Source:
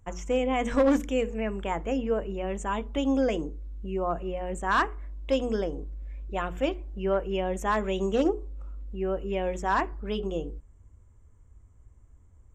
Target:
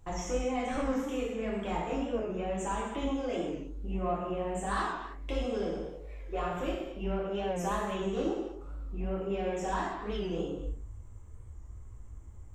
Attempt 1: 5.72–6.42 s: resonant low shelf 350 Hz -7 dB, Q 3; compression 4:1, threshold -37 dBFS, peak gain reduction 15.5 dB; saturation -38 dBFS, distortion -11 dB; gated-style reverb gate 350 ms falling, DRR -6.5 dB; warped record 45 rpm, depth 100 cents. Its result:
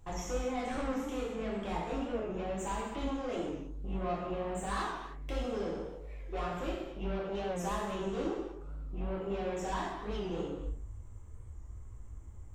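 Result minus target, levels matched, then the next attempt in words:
saturation: distortion +9 dB
5.72–6.42 s: resonant low shelf 350 Hz -7 dB, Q 3; compression 4:1, threshold -37 dBFS, peak gain reduction 15.5 dB; saturation -30 dBFS, distortion -21 dB; gated-style reverb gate 350 ms falling, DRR -6.5 dB; warped record 45 rpm, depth 100 cents

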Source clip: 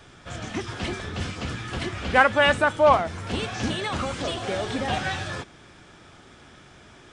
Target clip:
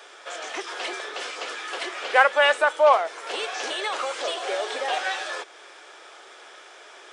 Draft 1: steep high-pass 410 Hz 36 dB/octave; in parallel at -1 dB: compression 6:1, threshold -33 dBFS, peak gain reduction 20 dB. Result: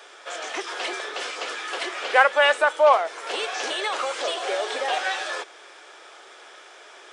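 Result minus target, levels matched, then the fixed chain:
compression: peak gain reduction -6 dB
steep high-pass 410 Hz 36 dB/octave; in parallel at -1 dB: compression 6:1, threshold -40 dBFS, peak gain reduction 25.5 dB

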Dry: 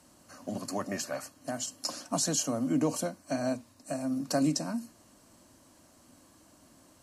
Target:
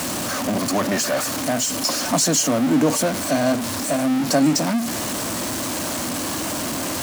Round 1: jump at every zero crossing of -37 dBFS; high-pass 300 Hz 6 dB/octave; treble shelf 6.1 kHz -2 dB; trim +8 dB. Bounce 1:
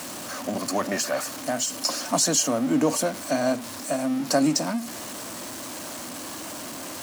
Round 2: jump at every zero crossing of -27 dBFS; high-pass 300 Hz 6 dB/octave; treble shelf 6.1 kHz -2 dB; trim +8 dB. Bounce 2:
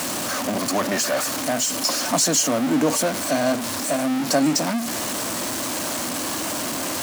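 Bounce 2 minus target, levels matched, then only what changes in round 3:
125 Hz band -4.0 dB
change: high-pass 110 Hz 6 dB/octave

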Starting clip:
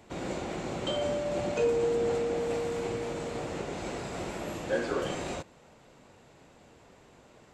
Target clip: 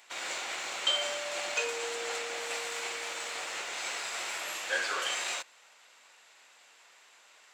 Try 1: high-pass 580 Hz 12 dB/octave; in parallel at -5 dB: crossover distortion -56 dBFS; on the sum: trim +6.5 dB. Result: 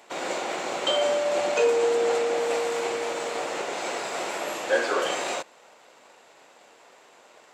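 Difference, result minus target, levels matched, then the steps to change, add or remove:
500 Hz band +9.0 dB
change: high-pass 1.6 kHz 12 dB/octave

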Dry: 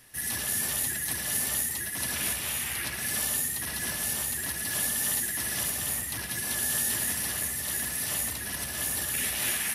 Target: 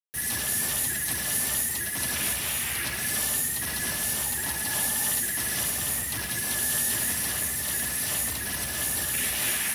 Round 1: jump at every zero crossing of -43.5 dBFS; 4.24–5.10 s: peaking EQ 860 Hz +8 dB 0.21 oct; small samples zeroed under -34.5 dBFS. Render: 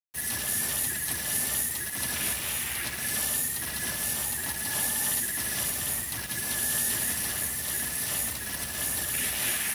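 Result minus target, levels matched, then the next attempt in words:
jump at every zero crossing: distortion -9 dB
jump at every zero crossing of -32.5 dBFS; 4.24–5.10 s: peaking EQ 860 Hz +8 dB 0.21 oct; small samples zeroed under -34.5 dBFS

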